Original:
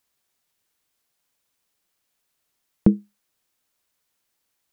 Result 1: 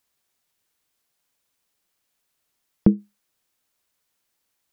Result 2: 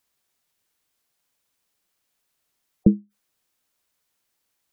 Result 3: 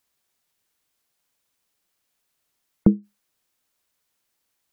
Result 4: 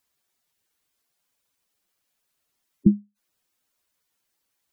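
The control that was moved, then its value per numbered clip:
spectral gate, under each frame's peak: -60 dB, -25 dB, -45 dB, -10 dB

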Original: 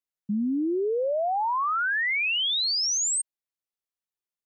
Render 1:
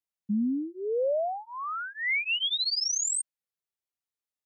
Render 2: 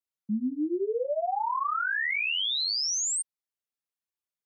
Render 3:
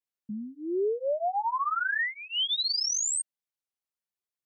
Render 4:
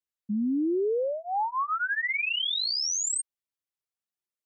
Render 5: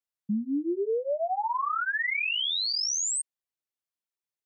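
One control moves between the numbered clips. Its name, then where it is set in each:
cancelling through-zero flanger, nulls at: 0.2 Hz, 1.9 Hz, 0.5 Hz, 0.33 Hz, 1.1 Hz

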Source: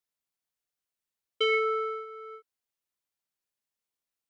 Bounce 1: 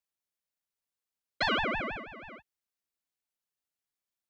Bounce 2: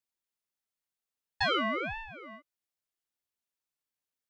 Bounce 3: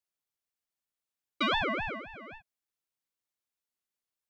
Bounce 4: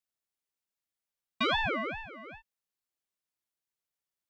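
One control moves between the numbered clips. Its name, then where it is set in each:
ring modulator with a swept carrier, at: 6.2 Hz, 1.5 Hz, 3.8 Hz, 2.5 Hz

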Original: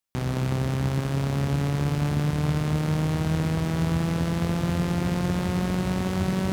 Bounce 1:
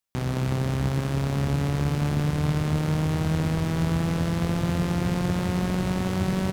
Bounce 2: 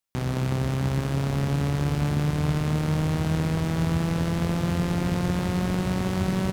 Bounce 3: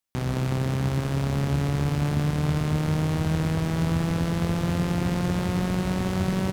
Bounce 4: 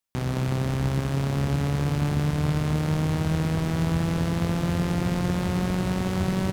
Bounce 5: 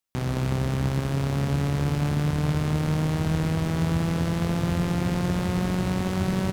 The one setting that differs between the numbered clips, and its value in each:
frequency-shifting echo, time: 324 ms, 483 ms, 138 ms, 208 ms, 81 ms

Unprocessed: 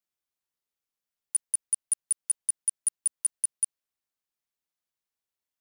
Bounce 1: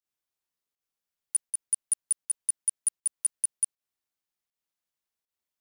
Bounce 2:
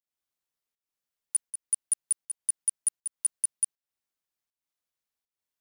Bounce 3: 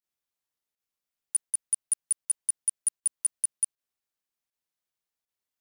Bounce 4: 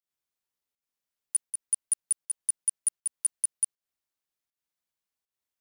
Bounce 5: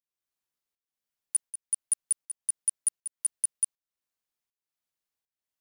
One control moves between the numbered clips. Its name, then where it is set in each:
volume shaper, release: 116 ms, 287 ms, 74 ms, 172 ms, 455 ms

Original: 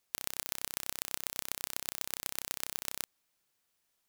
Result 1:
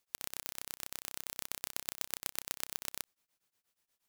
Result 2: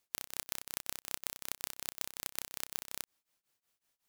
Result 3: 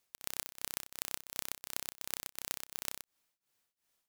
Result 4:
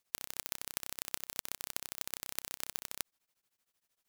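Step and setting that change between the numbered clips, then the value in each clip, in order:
tremolo of two beating tones, nulls at: 8.4 Hz, 5.4 Hz, 2.8 Hz, 13 Hz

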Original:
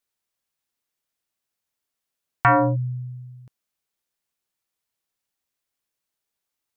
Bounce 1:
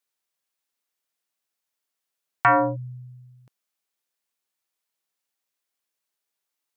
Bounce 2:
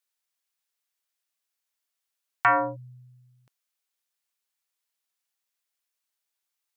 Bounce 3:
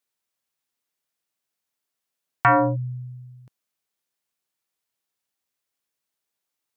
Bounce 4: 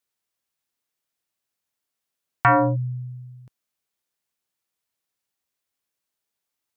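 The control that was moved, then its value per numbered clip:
high-pass, cutoff frequency: 330 Hz, 1.1 kHz, 120 Hz, 47 Hz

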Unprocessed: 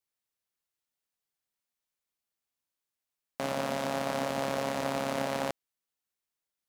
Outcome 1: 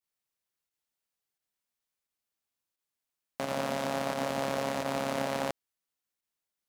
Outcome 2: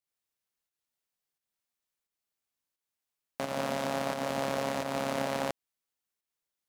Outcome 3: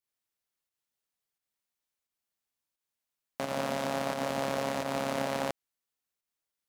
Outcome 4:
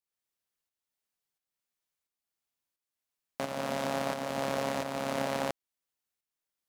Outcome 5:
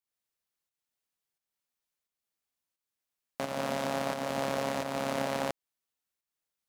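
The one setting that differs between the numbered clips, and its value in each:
volume shaper, release: 79 ms, 204 ms, 137 ms, 507 ms, 309 ms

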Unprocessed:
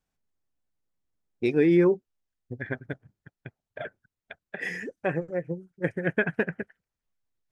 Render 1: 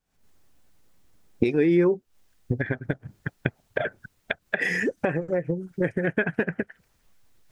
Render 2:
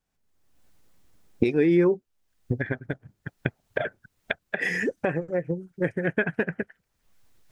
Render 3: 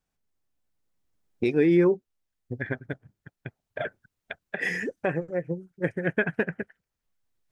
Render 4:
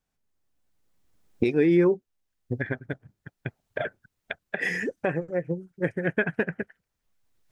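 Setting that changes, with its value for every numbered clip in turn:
recorder AGC, rising by: 86 dB/s, 34 dB/s, 5.2 dB/s, 13 dB/s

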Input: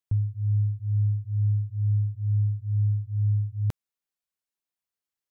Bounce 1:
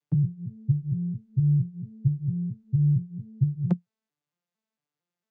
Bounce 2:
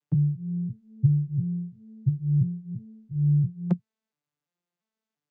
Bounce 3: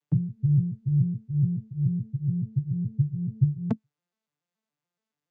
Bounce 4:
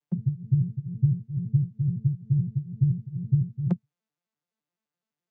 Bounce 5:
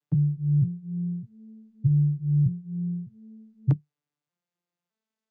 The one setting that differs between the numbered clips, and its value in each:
vocoder on a broken chord, a note every: 227 ms, 343 ms, 142 ms, 85 ms, 612 ms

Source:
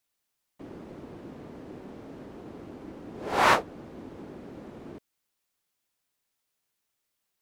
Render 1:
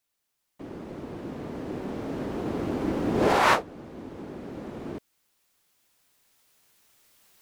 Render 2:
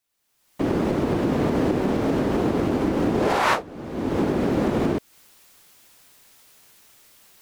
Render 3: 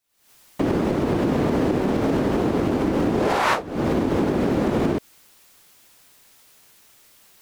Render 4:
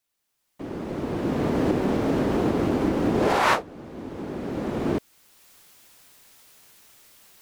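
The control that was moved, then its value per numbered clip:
recorder AGC, rising by: 5.3 dB/s, 35 dB/s, 86 dB/s, 14 dB/s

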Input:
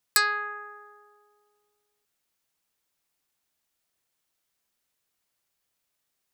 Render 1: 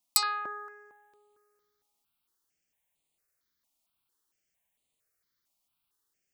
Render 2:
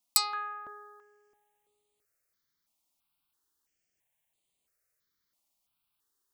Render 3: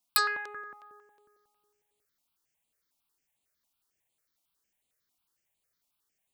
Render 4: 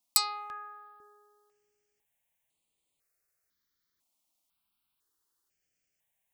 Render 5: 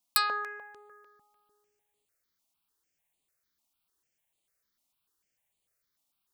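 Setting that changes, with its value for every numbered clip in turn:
stepped phaser, rate: 4.4 Hz, 3 Hz, 11 Hz, 2 Hz, 6.7 Hz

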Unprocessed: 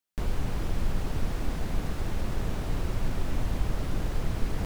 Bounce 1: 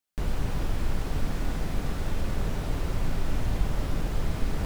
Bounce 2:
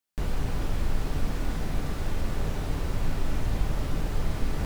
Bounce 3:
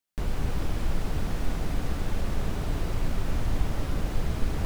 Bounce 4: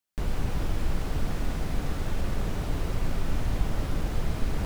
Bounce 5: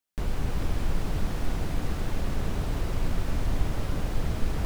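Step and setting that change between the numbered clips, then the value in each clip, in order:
gated-style reverb, gate: 130 ms, 80 ms, 320 ms, 200 ms, 490 ms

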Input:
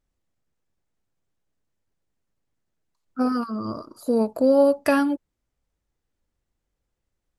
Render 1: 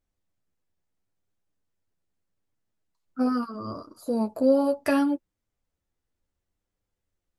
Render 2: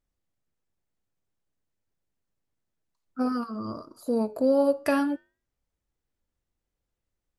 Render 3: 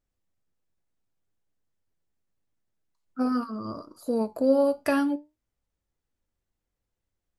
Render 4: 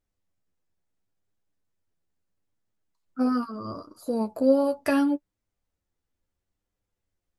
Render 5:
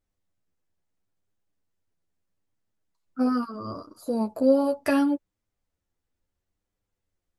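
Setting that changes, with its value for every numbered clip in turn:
flange, regen: -18%, -85%, +74%, +27%, +5%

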